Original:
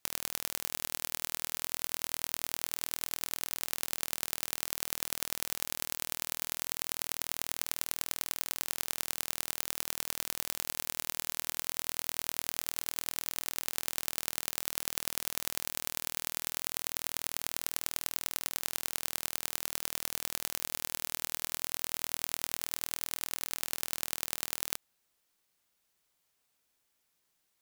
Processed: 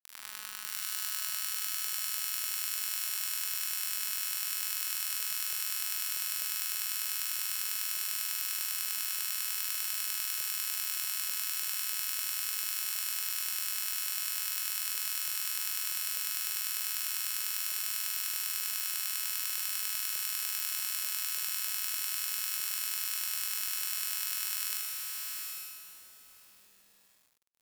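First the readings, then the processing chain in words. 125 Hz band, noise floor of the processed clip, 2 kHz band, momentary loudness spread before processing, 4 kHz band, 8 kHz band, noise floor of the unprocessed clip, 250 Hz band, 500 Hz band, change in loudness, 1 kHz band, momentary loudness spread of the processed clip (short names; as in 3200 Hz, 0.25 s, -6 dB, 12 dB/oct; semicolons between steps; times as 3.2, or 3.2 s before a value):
under -20 dB, -56 dBFS, +2.0 dB, 0 LU, +2.5 dB, +3.0 dB, -78 dBFS, under -20 dB, under -20 dB, +3.0 dB, -3.5 dB, 1 LU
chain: in parallel at 0 dB: limiter -11.5 dBFS, peak gain reduction 8 dB; on the sum: HPF 1100 Hz 24 dB/oct; diffused feedback echo 0.712 s, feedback 55%, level -3.5 dB; gate -38 dBFS, range -12 dB; notch 6500 Hz, Q 17; flutter echo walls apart 6.8 m, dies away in 1.2 s; requantised 8-bit, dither none; gain -8 dB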